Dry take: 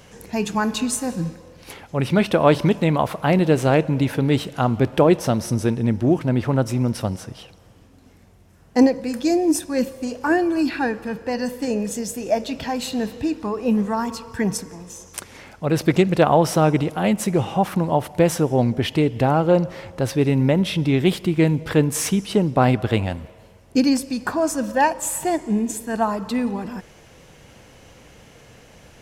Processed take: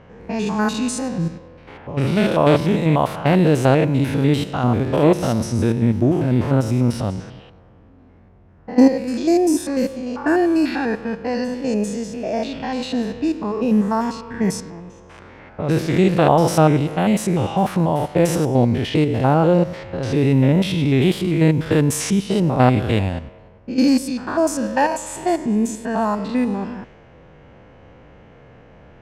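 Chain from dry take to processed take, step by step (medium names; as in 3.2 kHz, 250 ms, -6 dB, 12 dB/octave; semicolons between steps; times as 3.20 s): spectrogram pixelated in time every 100 ms; level-controlled noise filter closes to 1.5 kHz, open at -18.5 dBFS; trim +4 dB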